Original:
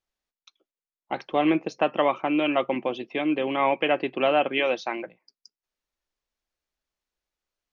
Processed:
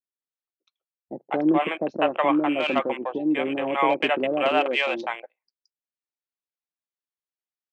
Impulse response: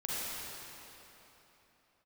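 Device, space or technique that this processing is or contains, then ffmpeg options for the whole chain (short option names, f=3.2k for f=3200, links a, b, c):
over-cleaned archive recording: -filter_complex "[0:a]highpass=150,lowpass=5.2k,acrossover=split=560[a][b];[b]adelay=200[c];[a][c]amix=inputs=2:normalize=0,afwtdn=0.0158,volume=3dB"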